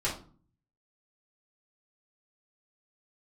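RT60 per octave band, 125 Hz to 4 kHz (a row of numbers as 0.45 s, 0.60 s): 0.85 s, 0.65 s, 0.45 s, 0.40 s, 0.30 s, 0.30 s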